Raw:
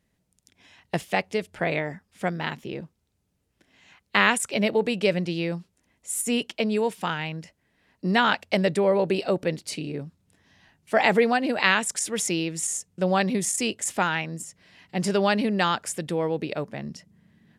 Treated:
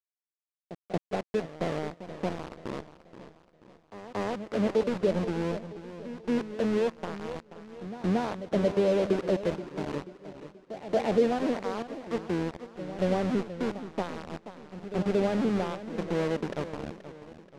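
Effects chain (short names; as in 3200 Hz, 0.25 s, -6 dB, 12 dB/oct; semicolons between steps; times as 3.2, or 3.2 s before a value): in parallel at -1 dB: compressor 12:1, threshold -34 dBFS, peak gain reduction 20.5 dB; on the sum: Butterworth band-pass 300 Hz, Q 0.6; AM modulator 89 Hz, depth 15%; sample gate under -28 dBFS; air absorption 83 m; pre-echo 0.229 s -13 dB; warbling echo 0.481 s, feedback 44%, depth 124 cents, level -13 dB; gain -2 dB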